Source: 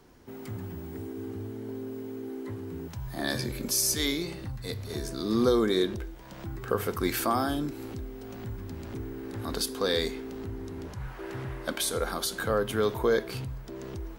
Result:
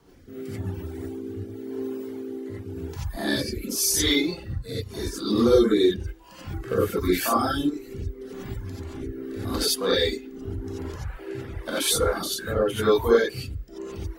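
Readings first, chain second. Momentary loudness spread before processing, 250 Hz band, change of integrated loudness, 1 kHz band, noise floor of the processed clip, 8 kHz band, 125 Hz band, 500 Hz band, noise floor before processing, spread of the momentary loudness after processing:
14 LU, +5.0 dB, +5.5 dB, +3.5 dB, -44 dBFS, +4.5 dB, +3.5 dB, +6.0 dB, -43 dBFS, 16 LU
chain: non-linear reverb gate 0.11 s rising, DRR -7.5 dB; reverb removal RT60 1.1 s; rotary speaker horn 0.9 Hz

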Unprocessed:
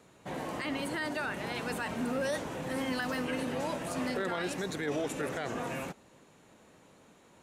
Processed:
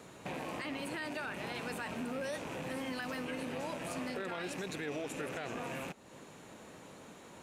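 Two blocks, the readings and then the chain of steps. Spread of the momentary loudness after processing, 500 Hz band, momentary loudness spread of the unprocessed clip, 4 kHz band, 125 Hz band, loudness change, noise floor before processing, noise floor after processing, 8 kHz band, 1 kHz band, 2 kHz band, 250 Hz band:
14 LU, -5.5 dB, 5 LU, -4.0 dB, -5.0 dB, -5.0 dB, -60 dBFS, -54 dBFS, -4.5 dB, -5.0 dB, -4.5 dB, -5.5 dB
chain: rattling part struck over -49 dBFS, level -34 dBFS; compressor 2.5:1, threshold -50 dBFS, peak gain reduction 14 dB; low shelf 62 Hz -5.5 dB; gain +7 dB

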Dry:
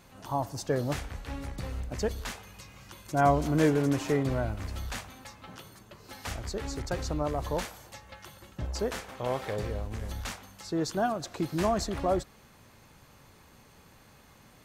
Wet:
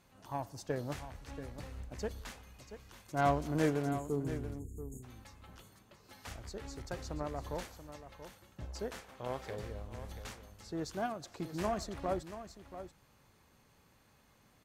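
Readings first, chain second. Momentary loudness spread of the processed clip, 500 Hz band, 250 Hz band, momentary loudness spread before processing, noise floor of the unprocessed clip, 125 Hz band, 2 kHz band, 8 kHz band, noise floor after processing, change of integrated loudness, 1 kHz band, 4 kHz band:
20 LU, -8.0 dB, -8.0 dB, 22 LU, -57 dBFS, -8.0 dB, -7.5 dB, -9.5 dB, -67 dBFS, -8.0 dB, -7.0 dB, -9.5 dB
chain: spectral delete 3.91–5.03, 480–6500 Hz; added harmonics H 7 -25 dB, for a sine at -10 dBFS; echo 0.683 s -11.5 dB; gain -6 dB

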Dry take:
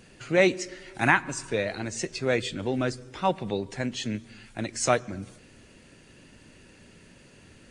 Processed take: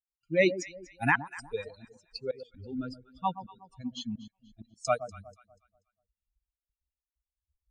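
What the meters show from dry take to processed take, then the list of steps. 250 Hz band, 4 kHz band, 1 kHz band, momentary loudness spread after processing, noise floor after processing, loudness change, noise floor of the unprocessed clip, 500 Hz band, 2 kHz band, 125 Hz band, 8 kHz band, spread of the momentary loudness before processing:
-6.0 dB, -8.0 dB, -4.5 dB, 19 LU, under -85 dBFS, -5.0 dB, -54 dBFS, -5.5 dB, -5.0 dB, -8.0 dB, -13.0 dB, 14 LU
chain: per-bin expansion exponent 3; step gate ".xxxx.xx.x" 65 bpm -24 dB; echo with dull and thin repeats by turns 0.121 s, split 1000 Hz, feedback 53%, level -12 dB

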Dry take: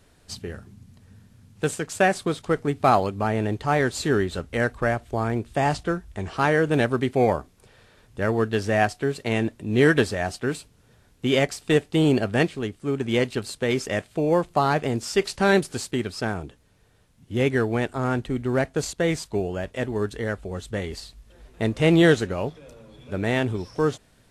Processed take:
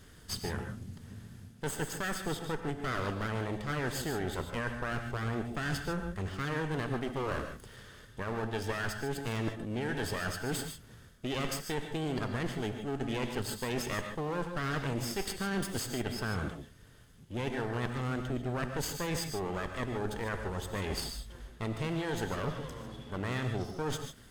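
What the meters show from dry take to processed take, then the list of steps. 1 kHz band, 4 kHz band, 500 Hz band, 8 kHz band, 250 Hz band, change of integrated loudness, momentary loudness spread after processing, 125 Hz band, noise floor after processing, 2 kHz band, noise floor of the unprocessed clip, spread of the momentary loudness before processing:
-12.0 dB, -7.5 dB, -14.0 dB, -5.0 dB, -12.0 dB, -11.5 dB, 8 LU, -9.0 dB, -55 dBFS, -10.0 dB, -59 dBFS, 10 LU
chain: minimum comb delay 0.61 ms; limiter -17 dBFS, peak gain reduction 11 dB; reverse; compressor 6:1, threshold -36 dBFS, peak gain reduction 13.5 dB; reverse; non-linear reverb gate 0.17 s rising, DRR 6 dB; gain +3.5 dB

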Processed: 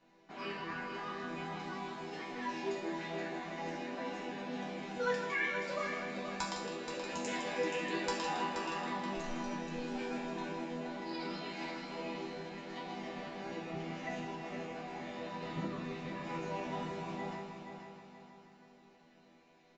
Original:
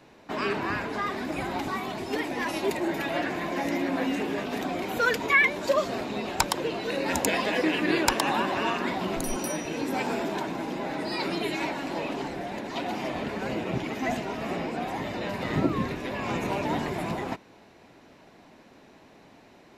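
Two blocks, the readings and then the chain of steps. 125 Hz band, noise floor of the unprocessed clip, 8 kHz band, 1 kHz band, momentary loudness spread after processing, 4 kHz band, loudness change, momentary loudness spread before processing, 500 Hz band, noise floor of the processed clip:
-10.5 dB, -54 dBFS, -14.0 dB, -10.0 dB, 8 LU, -11.0 dB, -11.0 dB, 8 LU, -10.5 dB, -63 dBFS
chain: downsampling 16000 Hz; resonator bank E3 minor, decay 0.56 s; on a send: multi-head echo 0.159 s, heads first and third, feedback 57%, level -8.5 dB; on the sum: gain +6.5 dB

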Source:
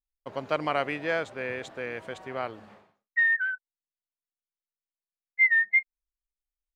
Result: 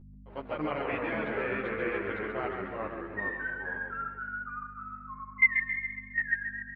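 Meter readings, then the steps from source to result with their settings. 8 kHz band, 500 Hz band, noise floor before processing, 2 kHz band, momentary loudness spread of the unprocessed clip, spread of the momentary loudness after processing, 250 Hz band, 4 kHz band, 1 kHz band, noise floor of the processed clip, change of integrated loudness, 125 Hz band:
n/a, -1.0 dB, under -85 dBFS, -4.0 dB, 17 LU, 16 LU, +3.0 dB, -8.0 dB, -0.5 dB, -49 dBFS, -5.5 dB, +1.5 dB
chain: LPF 3100 Hz 24 dB/oct; level quantiser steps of 18 dB; echoes that change speed 92 ms, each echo -2 st, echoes 3; hum 50 Hz, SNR 13 dB; feedback echo 0.136 s, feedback 53%, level -6 dB; ensemble effect; gain +4.5 dB

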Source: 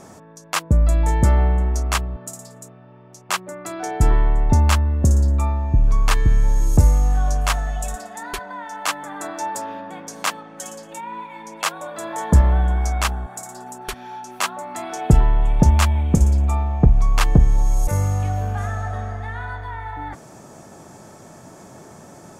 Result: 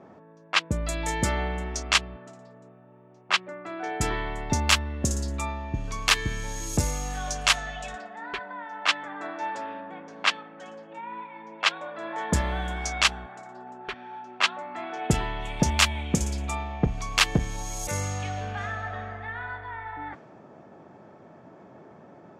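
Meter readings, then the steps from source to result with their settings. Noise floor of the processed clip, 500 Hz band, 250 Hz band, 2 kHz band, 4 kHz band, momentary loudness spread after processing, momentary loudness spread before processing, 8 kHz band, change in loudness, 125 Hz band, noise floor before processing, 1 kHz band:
-51 dBFS, -5.0 dB, -7.0 dB, +2.5 dB, +5.0 dB, 16 LU, 16 LU, -1.0 dB, -7.0 dB, -13.0 dB, -44 dBFS, -4.5 dB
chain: low-pass opened by the level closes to 880 Hz, open at -13.5 dBFS; weighting filter D; gain -4.5 dB

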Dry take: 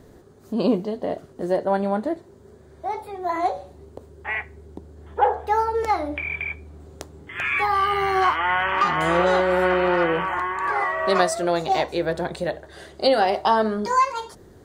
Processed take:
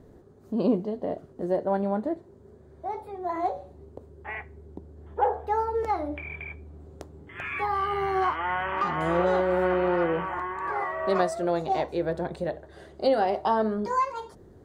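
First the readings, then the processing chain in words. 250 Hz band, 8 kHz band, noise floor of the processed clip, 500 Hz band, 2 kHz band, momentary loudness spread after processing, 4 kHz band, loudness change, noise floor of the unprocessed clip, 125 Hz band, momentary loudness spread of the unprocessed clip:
-3.0 dB, under -10 dB, -52 dBFS, -4.0 dB, -9.0 dB, 17 LU, -12.0 dB, -5.5 dB, -49 dBFS, -2.5 dB, 14 LU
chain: tilt shelf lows +5.5 dB, about 1400 Hz; gain -8 dB

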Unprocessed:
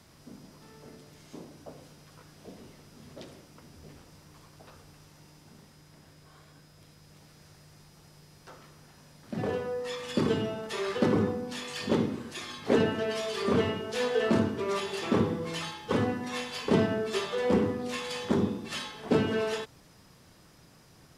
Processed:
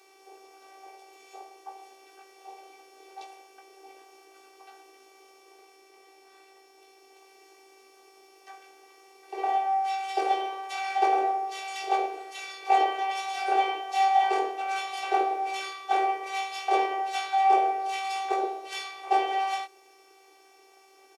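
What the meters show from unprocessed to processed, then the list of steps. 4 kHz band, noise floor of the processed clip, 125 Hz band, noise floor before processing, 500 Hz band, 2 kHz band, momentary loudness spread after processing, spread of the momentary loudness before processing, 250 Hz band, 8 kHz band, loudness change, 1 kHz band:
-0.5 dB, -58 dBFS, under -40 dB, -57 dBFS, -5.0 dB, +2.5 dB, 14 LU, 20 LU, -14.0 dB, 0.0 dB, +2.5 dB, +14.5 dB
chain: frequency shift +280 Hz; thirty-one-band EQ 800 Hz +11 dB, 2500 Hz +11 dB, 6300 Hz +3 dB; robotiser 388 Hz; doubler 19 ms -5 dB; gain -1.5 dB

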